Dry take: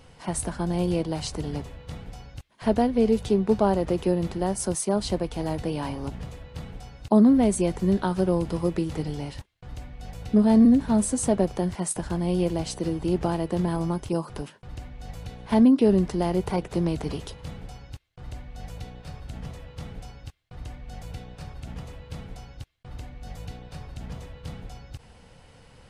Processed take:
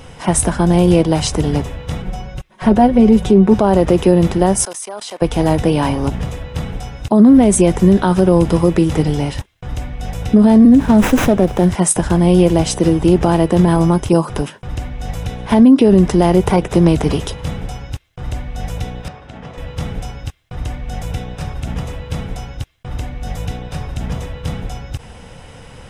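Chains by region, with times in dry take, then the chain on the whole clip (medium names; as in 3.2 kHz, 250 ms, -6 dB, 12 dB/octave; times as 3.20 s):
2.02–3.54 s: treble shelf 2.1 kHz -7.5 dB + comb 5.4 ms, depth 70%
4.65–5.22 s: high-pass 770 Hz + level held to a coarse grid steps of 21 dB
10.74–11.70 s: peaking EQ 7.4 kHz +4 dB 0.33 oct + sliding maximum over 5 samples
19.08–19.58 s: high-pass 470 Hz 6 dB/octave + tape spacing loss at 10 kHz 21 dB
whole clip: band-stop 4.4 kHz, Q 6.8; loudness maximiser +15.5 dB; trim -1 dB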